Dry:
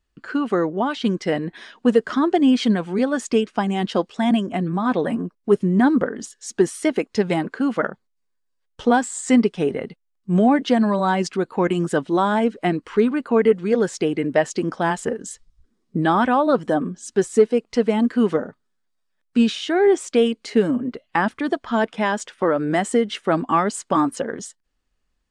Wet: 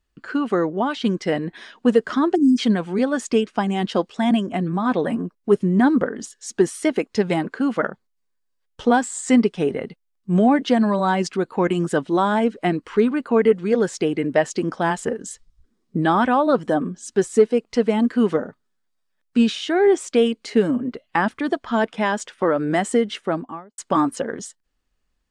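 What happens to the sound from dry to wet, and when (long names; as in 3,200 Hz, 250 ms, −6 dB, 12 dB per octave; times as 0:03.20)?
0:02.35–0:02.58: time-frequency box erased 450–4,800 Hz
0:23.04–0:23.78: fade out and dull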